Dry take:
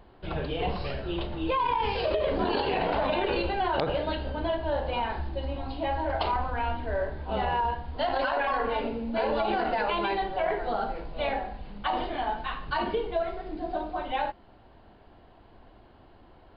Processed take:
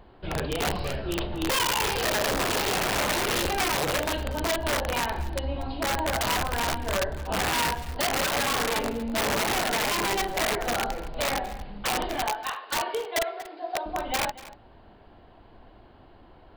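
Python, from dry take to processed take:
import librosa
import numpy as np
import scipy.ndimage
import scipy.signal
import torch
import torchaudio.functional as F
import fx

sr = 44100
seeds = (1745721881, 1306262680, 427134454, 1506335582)

y = fx.highpass(x, sr, hz=460.0, slope=24, at=(12.26, 13.86))
y = (np.mod(10.0 ** (22.0 / 20.0) * y + 1.0, 2.0) - 1.0) / 10.0 ** (22.0 / 20.0)
y = y + 10.0 ** (-17.5 / 20.0) * np.pad(y, (int(237 * sr / 1000.0), 0))[:len(y)]
y = y * librosa.db_to_amplitude(2.0)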